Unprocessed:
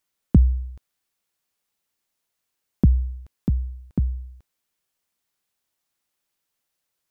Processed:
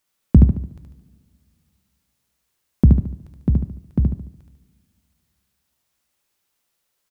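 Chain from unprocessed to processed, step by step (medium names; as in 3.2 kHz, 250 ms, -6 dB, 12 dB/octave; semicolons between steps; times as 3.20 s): on a send: feedback delay 73 ms, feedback 40%, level -3 dB; on the sum: two-slope reverb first 0.55 s, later 2.4 s, from -18 dB, DRR 13 dB; trim +3.5 dB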